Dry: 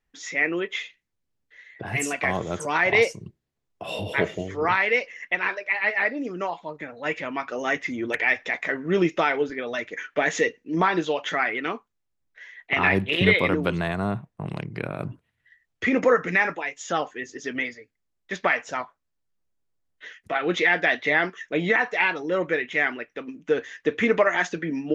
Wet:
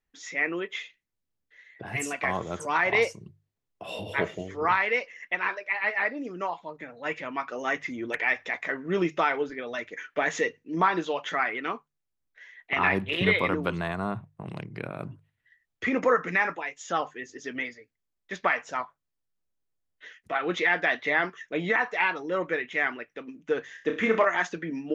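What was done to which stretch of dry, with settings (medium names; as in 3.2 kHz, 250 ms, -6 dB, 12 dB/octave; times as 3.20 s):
23.72–24.25 s: flutter echo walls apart 5.4 m, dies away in 0.33 s
whole clip: hum notches 50/100/150 Hz; dynamic bell 1.1 kHz, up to +6 dB, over -36 dBFS, Q 1.7; trim -5 dB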